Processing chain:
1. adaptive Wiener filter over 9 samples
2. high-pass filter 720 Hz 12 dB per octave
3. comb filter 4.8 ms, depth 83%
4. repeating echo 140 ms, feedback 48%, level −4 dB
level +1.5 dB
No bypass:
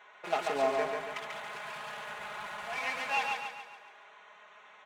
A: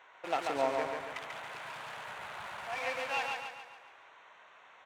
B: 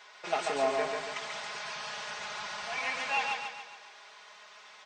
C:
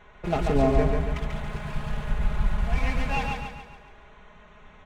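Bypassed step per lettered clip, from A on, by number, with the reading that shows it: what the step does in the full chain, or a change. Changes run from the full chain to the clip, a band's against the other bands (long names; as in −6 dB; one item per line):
3, 250 Hz band +2.0 dB
1, 8 kHz band +6.0 dB
2, 125 Hz band +29.0 dB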